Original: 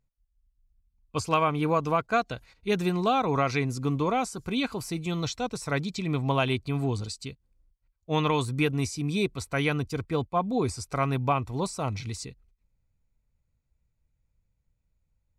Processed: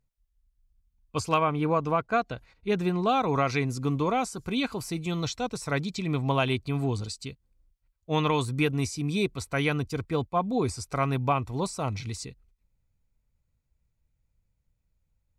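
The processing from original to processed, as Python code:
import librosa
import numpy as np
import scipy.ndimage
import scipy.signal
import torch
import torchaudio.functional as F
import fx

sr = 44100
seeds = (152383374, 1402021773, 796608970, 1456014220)

y = fx.high_shelf(x, sr, hz=3800.0, db=-9.5, at=(1.38, 3.09))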